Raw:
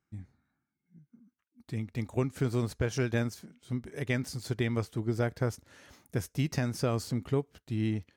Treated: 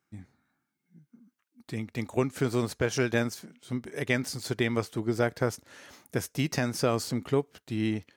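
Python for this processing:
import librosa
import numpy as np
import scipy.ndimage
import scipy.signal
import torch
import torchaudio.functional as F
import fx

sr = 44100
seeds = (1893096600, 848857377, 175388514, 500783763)

y = fx.highpass(x, sr, hz=270.0, slope=6)
y = y * librosa.db_to_amplitude(6.0)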